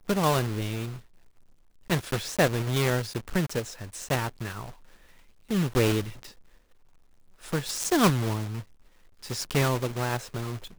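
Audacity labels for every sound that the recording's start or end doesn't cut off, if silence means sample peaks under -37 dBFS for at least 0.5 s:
1.900000	4.690000	sound
5.510000	6.290000	sound
7.440000	8.620000	sound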